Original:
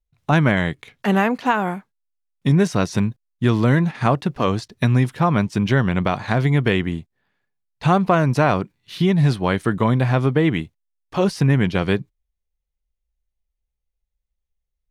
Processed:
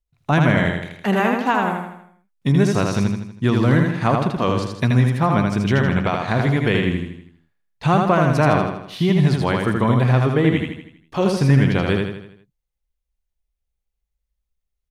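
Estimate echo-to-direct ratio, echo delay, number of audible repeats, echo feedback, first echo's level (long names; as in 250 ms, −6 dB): −2.5 dB, 80 ms, 5, 48%, −3.5 dB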